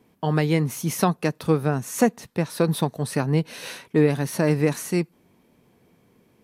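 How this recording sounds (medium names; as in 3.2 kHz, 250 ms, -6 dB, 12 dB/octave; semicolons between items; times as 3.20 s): noise floor -62 dBFS; spectral tilt -6.0 dB/octave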